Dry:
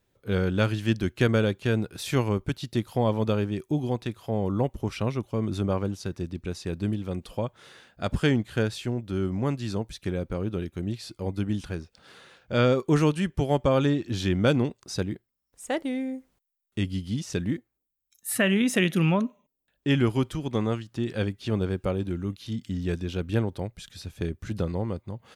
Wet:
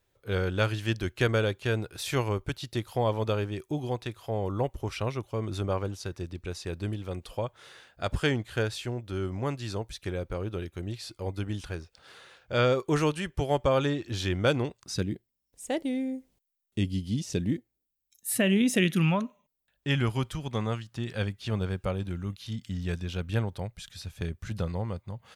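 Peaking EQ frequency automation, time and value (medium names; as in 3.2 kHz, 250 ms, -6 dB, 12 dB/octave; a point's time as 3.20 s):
peaking EQ -9.5 dB 1.2 oct
14.68 s 210 Hz
15.13 s 1.3 kHz
18.73 s 1.3 kHz
19.15 s 310 Hz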